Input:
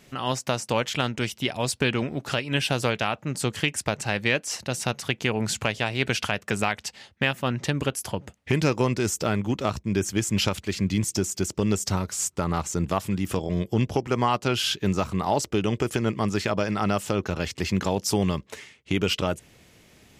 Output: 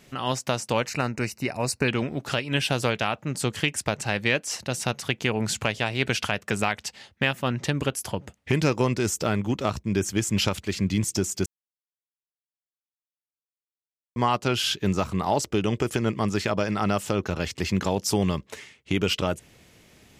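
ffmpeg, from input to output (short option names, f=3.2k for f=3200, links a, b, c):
-filter_complex "[0:a]asettb=1/sr,asplit=3[a][b][c];[a]atrim=end=0.864[d];[b]atrim=start=0.86:end=1.88,asetpts=PTS-STARTPTS,afade=t=in:d=0.004:c=qsin,afade=t=out:st=1.016:d=0.004:c=qsin,asuperstop=centerf=3300:order=4:qfactor=2.3[e];[c]atrim=start=1.876[f];[d][e]acrossfade=d=0.004:c1=hsin:c2=qsin[g];[g][f]acrossfade=d=0.004:c1=qsin:c2=hsin,asplit=3[h][i][j];[h]atrim=end=11.46,asetpts=PTS-STARTPTS,afade=t=out:st=11.456:d=0.004:c=hsin[k];[i]atrim=start=11.46:end=14.16,asetpts=PTS-STARTPTS,volume=0[l];[j]atrim=start=14.16,asetpts=PTS-STARTPTS,afade=t=in:d=0.004:c=hsin[m];[k][l][m]concat=n=3:v=0:a=1"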